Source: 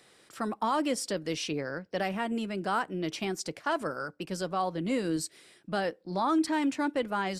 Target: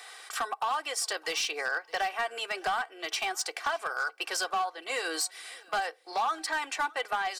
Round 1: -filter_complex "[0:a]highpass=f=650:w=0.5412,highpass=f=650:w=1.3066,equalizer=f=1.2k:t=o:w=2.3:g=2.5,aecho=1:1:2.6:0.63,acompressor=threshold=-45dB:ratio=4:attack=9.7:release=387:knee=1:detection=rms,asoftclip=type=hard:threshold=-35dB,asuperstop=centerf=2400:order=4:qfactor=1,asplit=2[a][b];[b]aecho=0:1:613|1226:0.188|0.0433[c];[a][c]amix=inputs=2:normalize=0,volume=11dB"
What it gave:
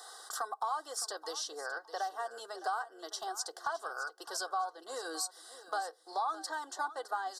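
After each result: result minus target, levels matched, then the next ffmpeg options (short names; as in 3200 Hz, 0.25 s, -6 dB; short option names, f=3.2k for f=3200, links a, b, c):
echo-to-direct +9.5 dB; compressor: peak gain reduction +5.5 dB; 2000 Hz band -4.0 dB
-filter_complex "[0:a]highpass=f=650:w=0.5412,highpass=f=650:w=1.3066,equalizer=f=1.2k:t=o:w=2.3:g=2.5,aecho=1:1:2.6:0.63,acompressor=threshold=-45dB:ratio=4:attack=9.7:release=387:knee=1:detection=rms,asoftclip=type=hard:threshold=-35dB,asuperstop=centerf=2400:order=4:qfactor=1,asplit=2[a][b];[b]aecho=0:1:613|1226:0.0631|0.0145[c];[a][c]amix=inputs=2:normalize=0,volume=11dB"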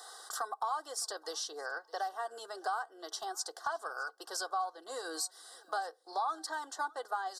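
compressor: peak gain reduction +5.5 dB; 2000 Hz band -4.0 dB
-filter_complex "[0:a]highpass=f=650:w=0.5412,highpass=f=650:w=1.3066,equalizer=f=1.2k:t=o:w=2.3:g=2.5,aecho=1:1:2.6:0.63,acompressor=threshold=-37.5dB:ratio=4:attack=9.7:release=387:knee=1:detection=rms,asoftclip=type=hard:threshold=-35dB,asuperstop=centerf=2400:order=4:qfactor=1,asplit=2[a][b];[b]aecho=0:1:613|1226:0.0631|0.0145[c];[a][c]amix=inputs=2:normalize=0,volume=11dB"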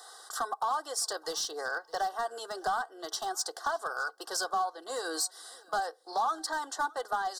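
2000 Hz band -4.0 dB
-filter_complex "[0:a]highpass=f=650:w=0.5412,highpass=f=650:w=1.3066,equalizer=f=1.2k:t=o:w=2.3:g=2.5,aecho=1:1:2.6:0.63,acompressor=threshold=-37.5dB:ratio=4:attack=9.7:release=387:knee=1:detection=rms,asoftclip=type=hard:threshold=-35dB,asplit=2[a][b];[b]aecho=0:1:613|1226:0.0631|0.0145[c];[a][c]amix=inputs=2:normalize=0,volume=11dB"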